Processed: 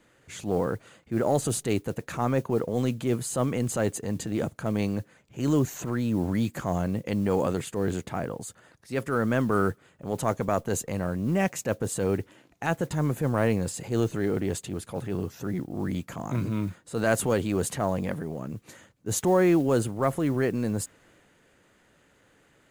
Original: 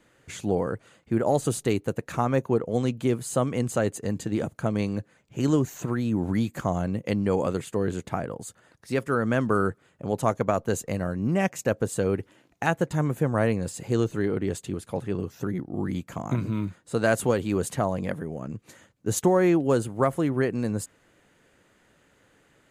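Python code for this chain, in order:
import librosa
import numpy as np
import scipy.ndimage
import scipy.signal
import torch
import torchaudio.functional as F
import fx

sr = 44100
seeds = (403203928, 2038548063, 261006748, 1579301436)

y = fx.mod_noise(x, sr, seeds[0], snr_db=31)
y = fx.transient(y, sr, attack_db=-6, sustain_db=3)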